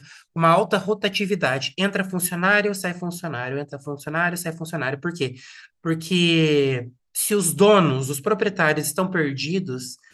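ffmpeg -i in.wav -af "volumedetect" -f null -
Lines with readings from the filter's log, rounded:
mean_volume: -22.2 dB
max_volume: -4.2 dB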